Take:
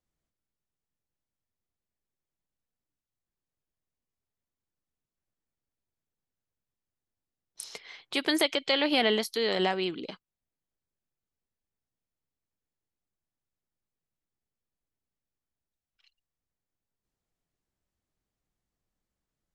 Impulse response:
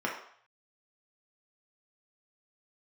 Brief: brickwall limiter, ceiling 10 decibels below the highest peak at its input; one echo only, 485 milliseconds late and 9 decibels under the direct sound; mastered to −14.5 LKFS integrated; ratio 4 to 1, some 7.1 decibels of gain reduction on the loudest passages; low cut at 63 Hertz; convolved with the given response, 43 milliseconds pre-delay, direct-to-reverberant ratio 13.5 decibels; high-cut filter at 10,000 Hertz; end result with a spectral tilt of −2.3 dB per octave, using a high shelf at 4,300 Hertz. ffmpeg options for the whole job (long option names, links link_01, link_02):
-filter_complex "[0:a]highpass=63,lowpass=10000,highshelf=frequency=4300:gain=9,acompressor=threshold=-27dB:ratio=4,alimiter=limit=-24dB:level=0:latency=1,aecho=1:1:485:0.355,asplit=2[link_01][link_02];[1:a]atrim=start_sample=2205,adelay=43[link_03];[link_02][link_03]afir=irnorm=-1:irlink=0,volume=-21.5dB[link_04];[link_01][link_04]amix=inputs=2:normalize=0,volume=21.5dB"